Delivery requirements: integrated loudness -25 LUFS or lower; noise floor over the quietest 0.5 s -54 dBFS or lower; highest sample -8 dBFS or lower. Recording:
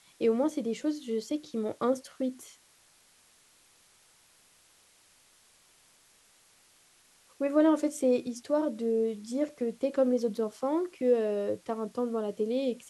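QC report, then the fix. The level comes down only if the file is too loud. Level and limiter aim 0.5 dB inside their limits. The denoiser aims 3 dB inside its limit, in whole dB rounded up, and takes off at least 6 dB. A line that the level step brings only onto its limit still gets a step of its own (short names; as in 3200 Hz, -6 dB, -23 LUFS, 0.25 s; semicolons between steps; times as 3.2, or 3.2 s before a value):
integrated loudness -30.0 LUFS: OK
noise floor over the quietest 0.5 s -63 dBFS: OK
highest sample -13.0 dBFS: OK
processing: none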